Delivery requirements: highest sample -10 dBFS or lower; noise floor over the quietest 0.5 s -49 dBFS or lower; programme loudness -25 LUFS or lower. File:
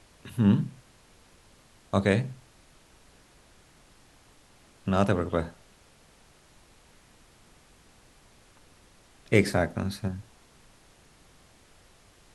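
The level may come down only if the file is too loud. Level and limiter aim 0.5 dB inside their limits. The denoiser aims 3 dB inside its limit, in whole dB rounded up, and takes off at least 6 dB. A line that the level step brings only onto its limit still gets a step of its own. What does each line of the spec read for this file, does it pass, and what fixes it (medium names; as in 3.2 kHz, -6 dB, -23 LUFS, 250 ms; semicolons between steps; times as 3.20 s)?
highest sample -6.0 dBFS: fail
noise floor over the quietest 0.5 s -58 dBFS: pass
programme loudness -27.5 LUFS: pass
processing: peak limiter -10.5 dBFS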